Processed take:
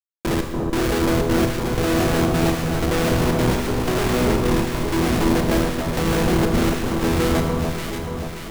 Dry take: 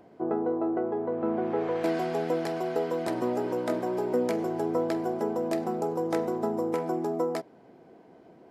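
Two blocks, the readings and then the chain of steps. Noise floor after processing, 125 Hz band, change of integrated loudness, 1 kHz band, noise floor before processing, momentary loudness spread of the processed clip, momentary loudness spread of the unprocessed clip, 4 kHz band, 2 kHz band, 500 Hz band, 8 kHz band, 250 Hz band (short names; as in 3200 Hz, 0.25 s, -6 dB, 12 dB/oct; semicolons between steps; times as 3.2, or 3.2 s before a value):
-31 dBFS, +20.0 dB, +8.5 dB, +7.5 dB, -55 dBFS, 5 LU, 2 LU, +20.0 dB, +16.0 dB, +5.0 dB, +20.5 dB, +10.0 dB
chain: spectral delete 4.28–5.03, 380–890 Hz; in parallel at +3 dB: compressor 16:1, threshold -37 dBFS, peak gain reduction 16 dB; on the sum: step gate "xx.xx....xxxx" 186 bpm; Schmitt trigger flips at -26.5 dBFS; on a send: echo with dull and thin repeats by turns 0.29 s, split 1200 Hz, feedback 75%, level -2.5 dB; on the sum: Schroeder reverb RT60 1.3 s, combs from 33 ms, DRR 5 dB; gain +8 dB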